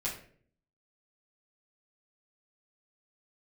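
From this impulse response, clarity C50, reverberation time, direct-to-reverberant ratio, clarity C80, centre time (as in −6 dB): 7.5 dB, 0.50 s, −7.0 dB, 11.5 dB, 26 ms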